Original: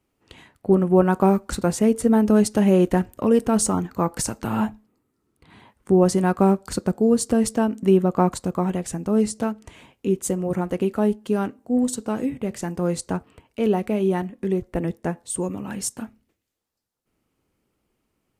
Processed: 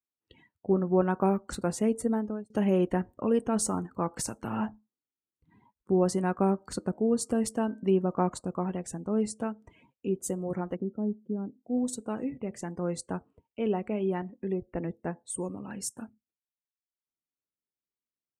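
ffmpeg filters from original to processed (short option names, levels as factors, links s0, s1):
-filter_complex "[0:a]asettb=1/sr,asplit=3[s0][s1][s2];[s0]atrim=end=6.494[s3];[s1]atrim=start=6.49:end=8.41,asetpts=PTS-STARTPTS,afade=t=in:d=0.004:c=qsin,afade=t=out:st=1.916:d=0.004:c=qsin,bandreject=f=310.6:t=h:w=4,bandreject=f=621.2:t=h:w=4,bandreject=f=931.8:t=h:w=4,bandreject=f=1242.4:t=h:w=4,bandreject=f=1553:t=h:w=4,bandreject=f=1863.6:t=h:w=4,bandreject=f=2174.2:t=h:w=4[s4];[s2]atrim=start=8.406[s5];[s3][s4]acrossfade=d=0.004:c1=hsin:c2=qsin[s6];[s6][s5]acrossfade=d=0.004:c1=qsin:c2=hsin,asplit=3[s7][s8][s9];[s7]afade=t=out:st=10.74:d=0.02[s10];[s8]bandpass=f=190:t=q:w=1,afade=t=in:st=10.74:d=0.02,afade=t=out:st=11.62:d=0.02[s11];[s9]afade=t=in:st=11.62:d=0.02[s12];[s10][s11][s12]amix=inputs=3:normalize=0,asplit=2[s13][s14];[s13]atrim=end=2.5,asetpts=PTS-STARTPTS,afade=t=out:st=2:d=0.5[s15];[s14]atrim=start=2.5,asetpts=PTS-STARTPTS,afade=t=in:d=0.004:c=hsin[s16];[s15][s16]concat=n=2:v=0:a=1,afftdn=nr=24:nf=-44,lowshelf=f=93:g=-6,volume=0.422"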